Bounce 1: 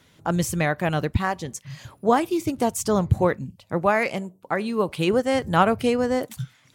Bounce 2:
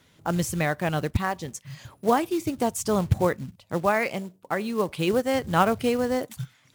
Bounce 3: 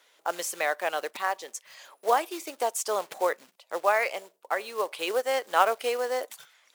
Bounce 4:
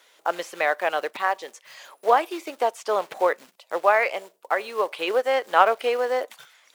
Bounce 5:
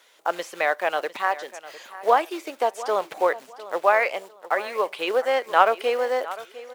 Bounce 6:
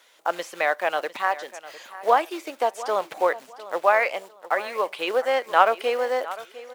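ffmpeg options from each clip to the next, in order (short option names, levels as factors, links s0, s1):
-af "acrusher=bits=5:mode=log:mix=0:aa=0.000001,volume=0.75"
-af "highpass=f=480:w=0.5412,highpass=f=480:w=1.3066"
-filter_complex "[0:a]acrossover=split=3800[s0][s1];[s1]acompressor=threshold=0.00251:ratio=4:attack=1:release=60[s2];[s0][s2]amix=inputs=2:normalize=0,volume=1.78"
-af "aecho=1:1:703|1406|2109:0.15|0.0389|0.0101"
-af "equalizer=f=410:w=5.2:g=-3.5"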